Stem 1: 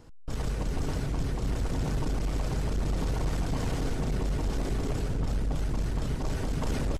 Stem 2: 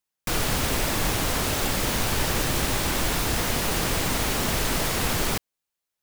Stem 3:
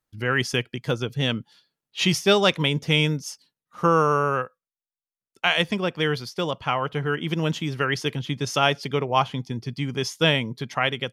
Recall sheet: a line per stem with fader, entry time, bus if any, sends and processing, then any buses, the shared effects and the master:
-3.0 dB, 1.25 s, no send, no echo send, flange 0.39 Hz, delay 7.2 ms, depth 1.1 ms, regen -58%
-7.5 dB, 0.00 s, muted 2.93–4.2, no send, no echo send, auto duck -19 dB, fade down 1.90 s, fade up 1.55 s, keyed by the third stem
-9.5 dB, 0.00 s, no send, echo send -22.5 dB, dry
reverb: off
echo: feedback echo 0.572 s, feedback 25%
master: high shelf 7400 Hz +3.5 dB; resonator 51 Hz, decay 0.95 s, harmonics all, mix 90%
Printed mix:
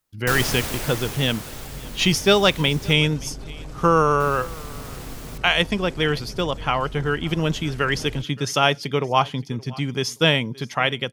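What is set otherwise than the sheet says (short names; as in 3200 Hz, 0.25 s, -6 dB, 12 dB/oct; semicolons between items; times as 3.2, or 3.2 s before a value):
stem 2 -7.5 dB -> +2.5 dB; stem 3 -9.5 dB -> +2.0 dB; master: missing resonator 51 Hz, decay 0.95 s, harmonics all, mix 90%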